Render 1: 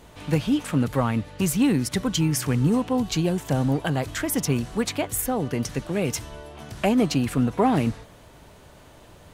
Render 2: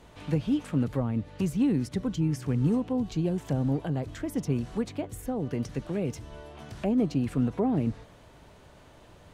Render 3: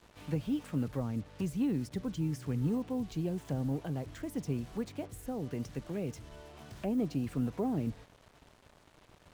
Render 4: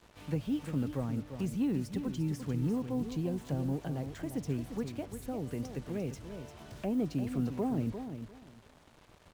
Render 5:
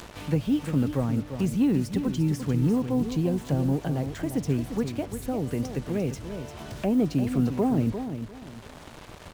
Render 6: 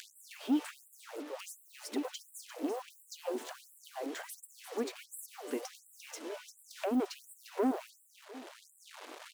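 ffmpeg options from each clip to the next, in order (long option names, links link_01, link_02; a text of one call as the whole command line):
ffmpeg -i in.wav -filter_complex "[0:a]highshelf=frequency=9700:gain=-11,acrossover=split=600[link_01][link_02];[link_02]acompressor=threshold=-40dB:ratio=6[link_03];[link_01][link_03]amix=inputs=2:normalize=0,volume=-4dB" out.wav
ffmpeg -i in.wav -af "acrusher=bits=7:mix=0:aa=0.5,volume=-6.5dB" out.wav
ffmpeg -i in.wav -af "aecho=1:1:348|696|1044:0.355|0.071|0.0142" out.wav
ffmpeg -i in.wav -af "acompressor=mode=upward:threshold=-42dB:ratio=2.5,volume=8.5dB" out.wav
ffmpeg -i in.wav -af "asoftclip=type=tanh:threshold=-20.5dB,afftfilt=real='re*gte(b*sr/1024,230*pow(7600/230,0.5+0.5*sin(2*PI*1.4*pts/sr)))':imag='im*gte(b*sr/1024,230*pow(7600/230,0.5+0.5*sin(2*PI*1.4*pts/sr)))':win_size=1024:overlap=0.75,volume=-1.5dB" out.wav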